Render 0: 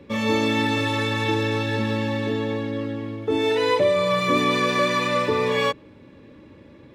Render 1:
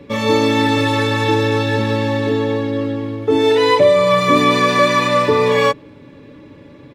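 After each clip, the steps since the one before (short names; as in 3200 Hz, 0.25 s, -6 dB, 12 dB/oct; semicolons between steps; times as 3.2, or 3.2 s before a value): comb 7 ms, depth 38%; gain +6 dB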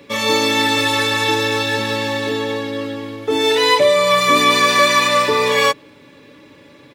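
tilt +3 dB/oct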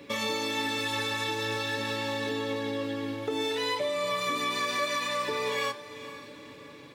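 compressor 4:1, threshold -25 dBFS, peak gain reduction 13.5 dB; flange 0.41 Hz, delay 3.1 ms, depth 7.7 ms, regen +86%; diffused feedback echo 0.484 s, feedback 44%, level -14 dB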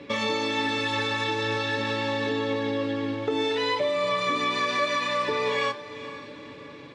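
air absorption 110 m; gain +5 dB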